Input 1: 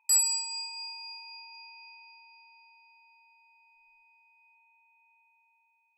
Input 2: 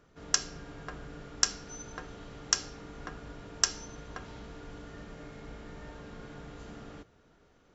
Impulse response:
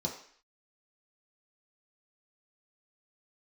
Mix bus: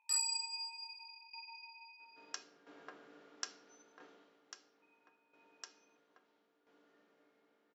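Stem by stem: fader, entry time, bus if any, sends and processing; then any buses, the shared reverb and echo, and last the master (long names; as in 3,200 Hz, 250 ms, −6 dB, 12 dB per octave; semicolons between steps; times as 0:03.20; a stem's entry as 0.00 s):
+1.0 dB, 0.00 s, muted 0:02.43–0:04.82, no send, multi-voice chorus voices 2, 0.38 Hz, delay 19 ms, depth 3.7 ms
0:03.97 −8.5 dB → 0:04.41 −20 dB, 2.00 s, no send, high-pass filter 270 Hz 24 dB per octave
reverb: not used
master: low-pass filter 5,200 Hz 12 dB per octave; shaped tremolo saw down 0.75 Hz, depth 70%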